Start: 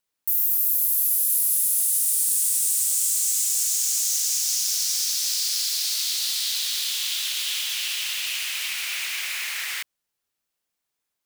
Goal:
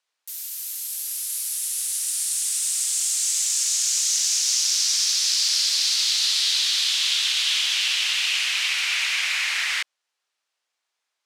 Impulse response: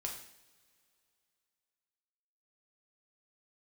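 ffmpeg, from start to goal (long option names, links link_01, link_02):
-af "highpass=640,lowpass=6200,volume=6.5dB"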